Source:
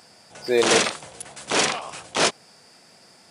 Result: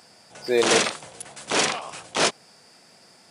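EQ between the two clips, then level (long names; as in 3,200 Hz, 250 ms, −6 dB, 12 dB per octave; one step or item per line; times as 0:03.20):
high-pass filter 77 Hz
−1.0 dB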